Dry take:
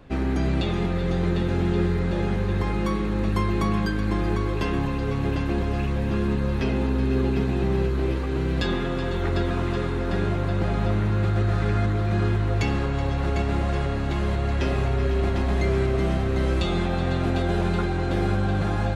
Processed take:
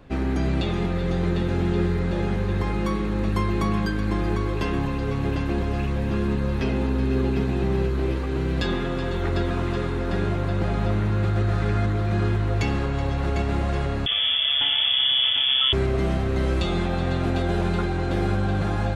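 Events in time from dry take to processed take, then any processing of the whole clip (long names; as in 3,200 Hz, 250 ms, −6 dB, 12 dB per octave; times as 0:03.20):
0:14.06–0:15.73: voice inversion scrambler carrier 3,400 Hz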